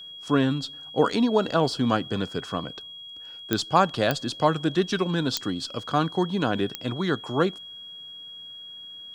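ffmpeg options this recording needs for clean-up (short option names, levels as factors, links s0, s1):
-af "adeclick=t=4,bandreject=f=3300:w=30"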